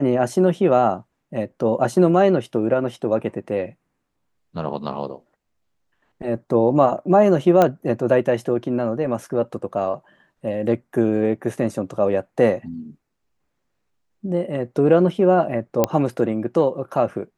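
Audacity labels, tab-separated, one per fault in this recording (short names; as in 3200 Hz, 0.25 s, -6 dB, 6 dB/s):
7.620000	7.620000	pop -5 dBFS
15.840000	15.840000	pop -3 dBFS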